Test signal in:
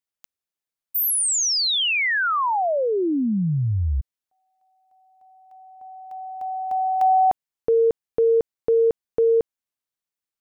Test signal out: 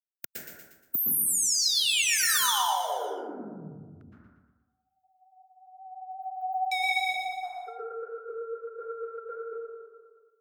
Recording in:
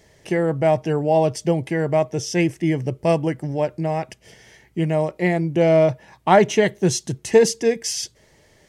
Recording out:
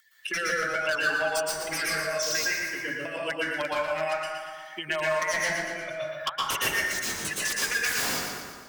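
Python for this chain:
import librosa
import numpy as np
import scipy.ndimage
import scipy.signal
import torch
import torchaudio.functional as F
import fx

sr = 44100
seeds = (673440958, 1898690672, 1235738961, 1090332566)

y = fx.bin_expand(x, sr, power=2.0)
y = fx.high_shelf(y, sr, hz=8400.0, db=4.0)
y = fx.over_compress(y, sr, threshold_db=-28.0, ratio=-0.5)
y = np.clip(y, -10.0 ** (-18.0 / 20.0), 10.0 ** (-18.0 / 20.0))
y = fx.highpass_res(y, sr, hz=1400.0, q=6.6)
y = 10.0 ** (-29.5 / 20.0) * (np.abs((y / 10.0 ** (-29.5 / 20.0) + 3.0) % 4.0 - 2.0) - 1.0)
y = fx.rotary(y, sr, hz=0.75)
y = fx.vibrato(y, sr, rate_hz=5.7, depth_cents=32.0)
y = fx.echo_feedback(y, sr, ms=118, feedback_pct=40, wet_db=-7.5)
y = fx.rev_plate(y, sr, seeds[0], rt60_s=0.98, hf_ratio=0.35, predelay_ms=105, drr_db=-7.0)
y = fx.band_squash(y, sr, depth_pct=70)
y = y * librosa.db_to_amplitude(6.0)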